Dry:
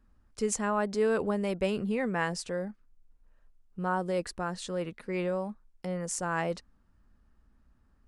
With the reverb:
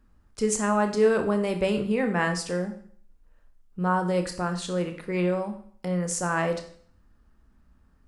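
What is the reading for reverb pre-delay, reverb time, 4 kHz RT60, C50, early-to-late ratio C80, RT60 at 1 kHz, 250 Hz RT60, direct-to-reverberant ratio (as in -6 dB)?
23 ms, 0.55 s, 0.55 s, 10.0 dB, 13.5 dB, 0.55 s, 0.55 s, 6.0 dB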